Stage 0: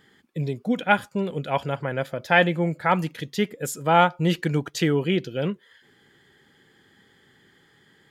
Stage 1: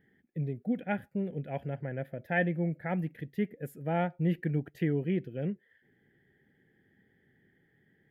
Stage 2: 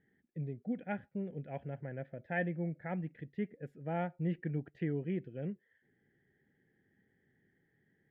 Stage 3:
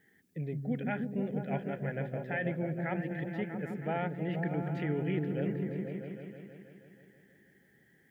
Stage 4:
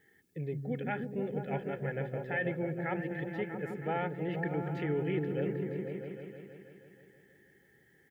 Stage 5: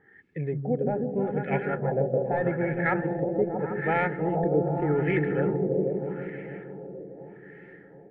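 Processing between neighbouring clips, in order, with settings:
drawn EQ curve 200 Hz 0 dB, 500 Hz −5 dB, 750 Hz −6 dB, 1,100 Hz −25 dB, 1,800 Hz −3 dB, 4,000 Hz −24 dB, 7,100 Hz −28 dB, 13,000 Hz −9 dB; level −5.5 dB
low-pass filter 2,900 Hz 12 dB per octave; level −6 dB
spectral tilt +2.5 dB per octave; brickwall limiter −33.5 dBFS, peak gain reduction 10.5 dB; echo whose low-pass opens from repeat to repeat 160 ms, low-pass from 200 Hz, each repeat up 1 octave, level 0 dB; level +8.5 dB
comb filter 2.3 ms, depth 43%
stylus tracing distortion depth 0.035 ms; delay that swaps between a low-pass and a high-pass 366 ms, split 840 Hz, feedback 71%, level −10 dB; auto-filter low-pass sine 0.82 Hz 550–2,100 Hz; level +6.5 dB

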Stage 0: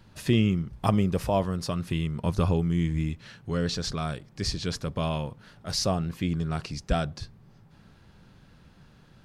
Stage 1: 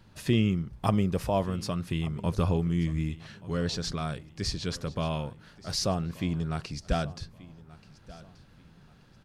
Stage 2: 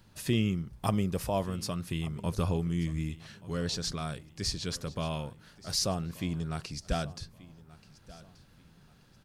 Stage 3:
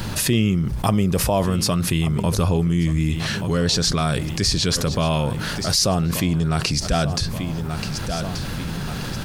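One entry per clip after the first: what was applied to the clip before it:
repeating echo 1,181 ms, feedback 30%, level −19.5 dB; level −2 dB
high-shelf EQ 6,100 Hz +10.5 dB; level −3.5 dB
envelope flattener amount 70%; level +7.5 dB

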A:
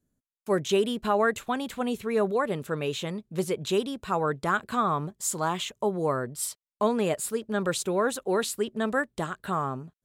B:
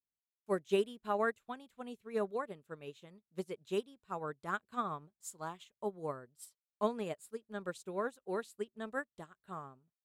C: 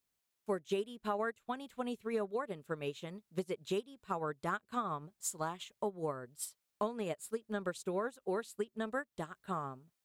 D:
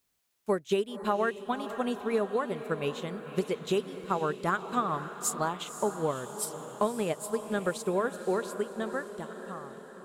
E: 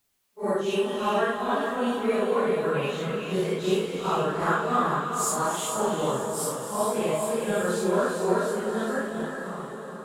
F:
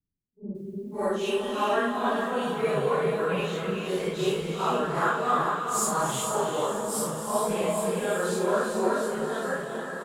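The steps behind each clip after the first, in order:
expander for the loud parts 2.5 to 1, over −37 dBFS; level −5.5 dB
downward compressor 5 to 1, threshold −45 dBFS, peak gain reduction 17 dB; level +11 dB
fade-out on the ending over 1.88 s; feedback delay with all-pass diffusion 527 ms, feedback 58%, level −11 dB; level +7.5 dB
random phases in long frames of 200 ms; reverb whose tail is shaped and stops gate 470 ms rising, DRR 3.5 dB; level +4 dB
multiband delay without the direct sound lows, highs 550 ms, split 280 Hz

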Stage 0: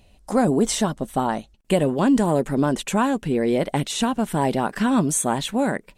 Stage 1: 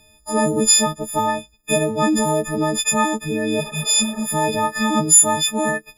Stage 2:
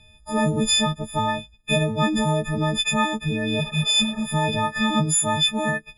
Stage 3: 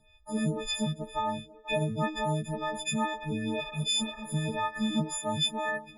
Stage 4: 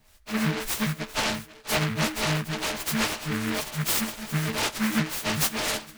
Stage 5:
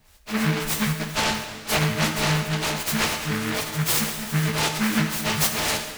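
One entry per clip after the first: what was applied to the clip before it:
every partial snapped to a pitch grid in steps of 6 semitones; healed spectral selection 0:03.63–0:04.22, 270–2,400 Hz after; level −1 dB
drawn EQ curve 140 Hz 0 dB, 340 Hz −14 dB, 560 Hz −10 dB, 1,200 Hz −9 dB, 4,100 Hz −2 dB, 6,000 Hz −25 dB, 8,800 Hz −6 dB, 12,000 Hz −29 dB; level +5.5 dB
delay with a band-pass on its return 492 ms, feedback 69%, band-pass 690 Hz, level −15 dB; phaser with staggered stages 2 Hz; level −5.5 dB
delay with a high-pass on its return 63 ms, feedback 71%, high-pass 5,500 Hz, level −12.5 dB; short delay modulated by noise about 1,600 Hz, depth 0.29 ms; level +3.5 dB
convolution reverb, pre-delay 3 ms, DRR 5.5 dB; level +2.5 dB

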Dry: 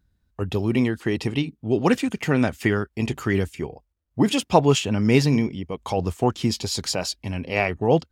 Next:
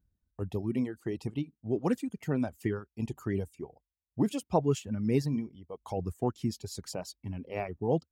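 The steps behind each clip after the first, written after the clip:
reverb reduction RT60 1.6 s
parametric band 2,900 Hz −12 dB 2.7 octaves
level −7.5 dB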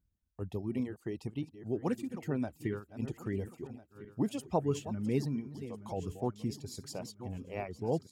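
feedback delay that plays each chunk backwards 675 ms, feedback 51%, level −12.5 dB
level −4 dB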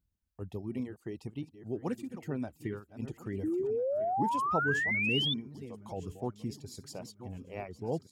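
sound drawn into the spectrogram rise, 0:03.43–0:05.34, 300–3,600 Hz −29 dBFS
level −2 dB

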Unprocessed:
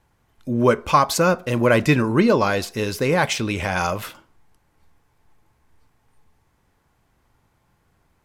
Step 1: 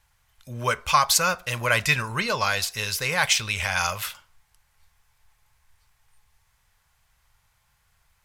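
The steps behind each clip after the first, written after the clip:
guitar amp tone stack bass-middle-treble 10-0-10
level +6 dB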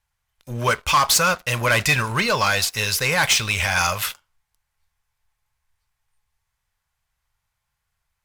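leveller curve on the samples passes 3
level −5 dB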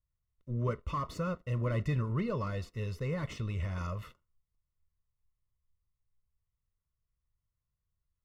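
moving average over 55 samples
level −4.5 dB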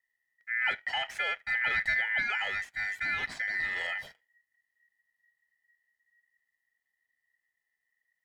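ring modulation 1,900 Hz
level +5 dB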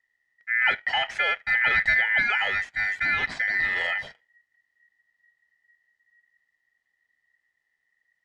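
high-frequency loss of the air 84 metres
level +8 dB

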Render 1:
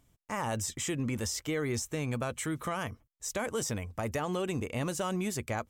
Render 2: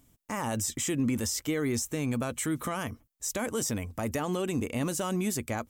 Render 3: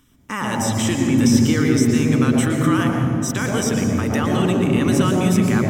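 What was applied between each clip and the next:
high-shelf EQ 7,900 Hz +9.5 dB; in parallel at −1 dB: brickwall limiter −28 dBFS, peak gain reduction 9.5 dB; on the sum: parametric band 260 Hz +7 dB 0.67 octaves; level −3.5 dB
convolution reverb RT60 3.4 s, pre-delay 115 ms, DRR 2 dB; level +1 dB

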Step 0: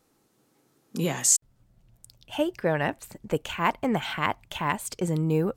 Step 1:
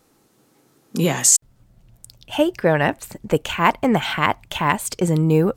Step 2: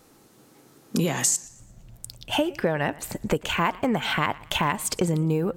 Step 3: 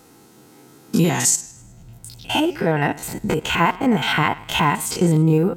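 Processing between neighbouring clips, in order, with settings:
boost into a limiter +9 dB; level −1 dB
downward compressor 6 to 1, threshold −25 dBFS, peak gain reduction 14 dB; feedback echo with a swinging delay time 116 ms, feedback 38%, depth 113 cents, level −21 dB; level +4 dB
spectrum averaged block by block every 50 ms; notch comb filter 580 Hz; level +8.5 dB

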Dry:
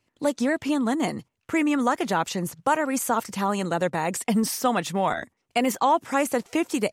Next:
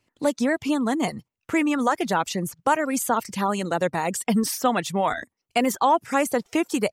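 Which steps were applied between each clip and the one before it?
reverb reduction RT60 0.56 s
level +1.5 dB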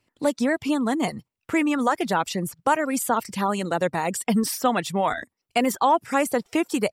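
notch filter 6,400 Hz, Q 11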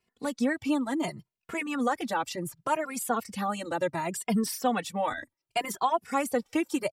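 barber-pole flanger 2.4 ms +0.68 Hz
level −3 dB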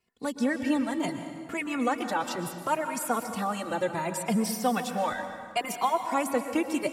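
convolution reverb RT60 2.0 s, pre-delay 108 ms, DRR 7 dB

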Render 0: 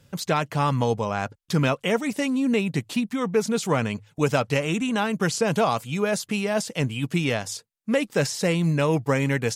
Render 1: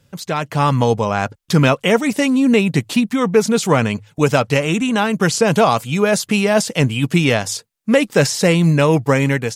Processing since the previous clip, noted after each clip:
automatic gain control gain up to 11.5 dB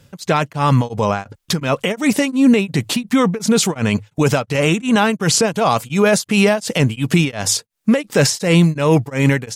brickwall limiter −12 dBFS, peak gain reduction 10.5 dB
tremolo along a rectified sine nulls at 2.8 Hz
level +7.5 dB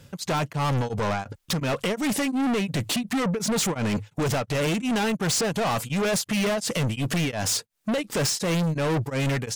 soft clipping −22 dBFS, distortion −5 dB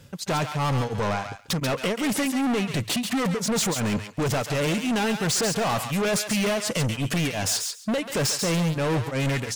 feedback echo with a high-pass in the loop 137 ms, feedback 16%, high-pass 1,200 Hz, level −5 dB

